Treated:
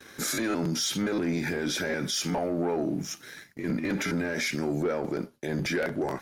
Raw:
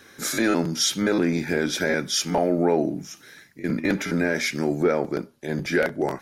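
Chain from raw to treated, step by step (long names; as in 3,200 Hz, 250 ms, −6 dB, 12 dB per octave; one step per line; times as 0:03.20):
noise gate with hold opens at −44 dBFS
leveller curve on the samples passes 1
brickwall limiter −21.5 dBFS, peak gain reduction 11 dB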